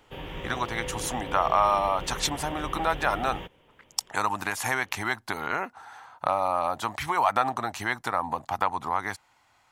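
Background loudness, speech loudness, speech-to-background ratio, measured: -38.0 LUFS, -28.0 LUFS, 10.0 dB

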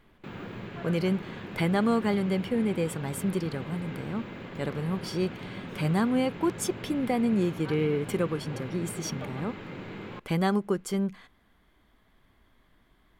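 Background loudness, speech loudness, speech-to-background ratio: -40.0 LUFS, -29.5 LUFS, 10.5 dB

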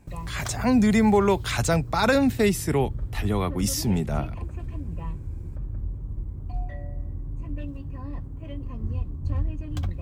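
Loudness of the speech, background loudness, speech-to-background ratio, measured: -23.5 LUFS, -34.5 LUFS, 11.0 dB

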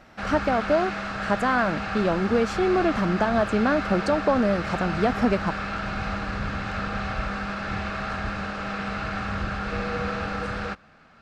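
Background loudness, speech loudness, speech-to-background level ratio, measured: -30.0 LUFS, -24.5 LUFS, 5.5 dB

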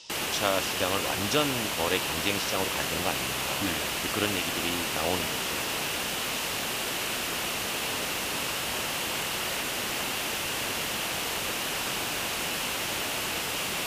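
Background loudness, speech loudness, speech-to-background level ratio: -29.0 LUFS, -32.0 LUFS, -3.0 dB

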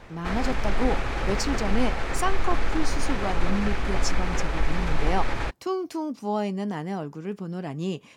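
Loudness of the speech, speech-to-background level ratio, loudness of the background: -31.0 LUFS, -1.0 dB, -30.0 LUFS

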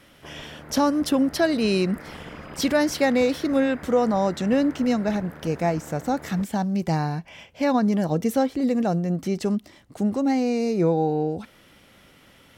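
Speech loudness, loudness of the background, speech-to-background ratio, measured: -23.5 LUFS, -41.5 LUFS, 18.0 dB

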